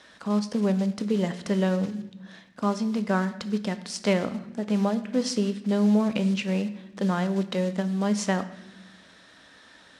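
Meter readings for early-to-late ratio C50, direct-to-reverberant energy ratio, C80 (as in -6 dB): 13.5 dB, 10.5 dB, 15.5 dB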